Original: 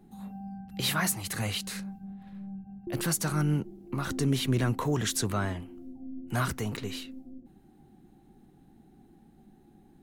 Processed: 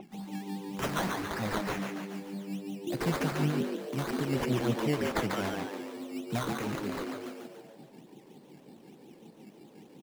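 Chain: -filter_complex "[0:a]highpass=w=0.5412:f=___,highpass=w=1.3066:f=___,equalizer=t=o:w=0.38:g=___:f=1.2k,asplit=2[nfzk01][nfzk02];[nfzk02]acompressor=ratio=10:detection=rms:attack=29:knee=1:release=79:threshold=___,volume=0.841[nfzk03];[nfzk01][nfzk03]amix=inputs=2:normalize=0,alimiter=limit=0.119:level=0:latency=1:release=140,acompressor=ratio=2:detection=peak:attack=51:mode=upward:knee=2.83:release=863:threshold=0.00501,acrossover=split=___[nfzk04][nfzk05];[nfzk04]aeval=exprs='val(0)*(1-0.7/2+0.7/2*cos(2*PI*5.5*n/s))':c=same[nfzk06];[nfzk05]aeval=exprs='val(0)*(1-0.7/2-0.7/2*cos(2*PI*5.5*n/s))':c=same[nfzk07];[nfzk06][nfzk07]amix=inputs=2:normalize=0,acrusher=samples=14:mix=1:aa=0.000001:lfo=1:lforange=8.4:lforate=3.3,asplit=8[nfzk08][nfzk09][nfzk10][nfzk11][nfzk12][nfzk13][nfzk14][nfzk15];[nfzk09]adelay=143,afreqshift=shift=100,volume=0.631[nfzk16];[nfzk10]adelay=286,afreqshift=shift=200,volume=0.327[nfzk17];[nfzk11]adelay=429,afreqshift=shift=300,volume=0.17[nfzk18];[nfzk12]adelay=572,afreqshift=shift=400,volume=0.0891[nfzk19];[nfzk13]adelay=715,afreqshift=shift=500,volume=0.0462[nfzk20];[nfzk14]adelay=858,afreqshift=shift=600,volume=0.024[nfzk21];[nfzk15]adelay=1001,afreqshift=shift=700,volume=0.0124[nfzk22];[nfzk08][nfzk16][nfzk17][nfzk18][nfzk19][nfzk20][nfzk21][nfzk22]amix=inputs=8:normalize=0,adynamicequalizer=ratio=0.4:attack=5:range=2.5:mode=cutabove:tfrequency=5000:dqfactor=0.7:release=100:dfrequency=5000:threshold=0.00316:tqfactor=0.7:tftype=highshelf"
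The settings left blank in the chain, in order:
130, 130, -6, 0.00891, 1300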